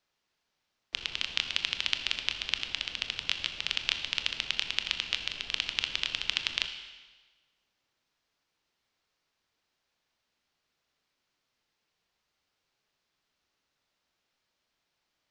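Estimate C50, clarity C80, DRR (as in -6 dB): 8.5 dB, 9.5 dB, 6.5 dB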